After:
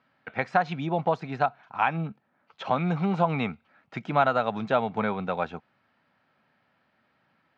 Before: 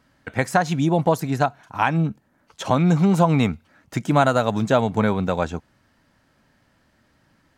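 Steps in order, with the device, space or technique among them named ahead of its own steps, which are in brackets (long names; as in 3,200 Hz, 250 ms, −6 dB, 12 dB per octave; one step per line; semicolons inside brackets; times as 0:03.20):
kitchen radio (loudspeaker in its box 160–4,100 Hz, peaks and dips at 300 Hz −6 dB, 770 Hz +5 dB, 1,300 Hz +5 dB, 2,400 Hz +5 dB)
level −7 dB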